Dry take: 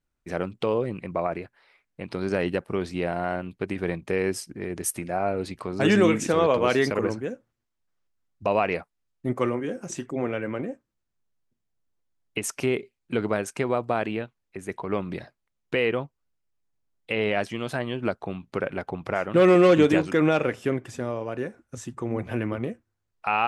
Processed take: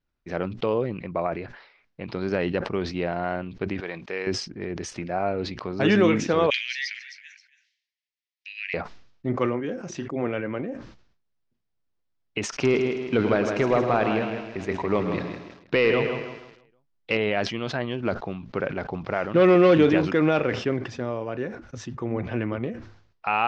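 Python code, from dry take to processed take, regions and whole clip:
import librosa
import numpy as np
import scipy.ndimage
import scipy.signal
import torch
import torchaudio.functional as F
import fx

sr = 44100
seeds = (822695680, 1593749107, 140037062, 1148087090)

y = fx.chain(x, sr, fx.highpass(hz=840.0, slope=6),
    fx.high_shelf(hz=8600.0, db=3.5), at=(3.8, 4.27))
y = fx.chain(y, sr, fx.steep_highpass(hz=1800.0, slope=72),
    fx.echo_single(ms=271, db=-15.5), at=(6.5, 8.74))
y = fx.chain(y, sr, fx.echo_feedback(ms=159, feedback_pct=41, wet_db=-7.5),
    fx.leveller(passes=1),
    fx.echo_crushed(ms=107, feedback_pct=55, bits=7, wet_db=-10.5), at=(12.49, 17.17))
y = fx.chain(y, sr, fx.block_float(bits=7),
    fx.high_shelf(hz=6300.0, db=-5.5), at=(17.91, 20.97))
y = scipy.signal.sosfilt(scipy.signal.butter(6, 5600.0, 'lowpass', fs=sr, output='sos'), y)
y = fx.sustainer(y, sr, db_per_s=83.0)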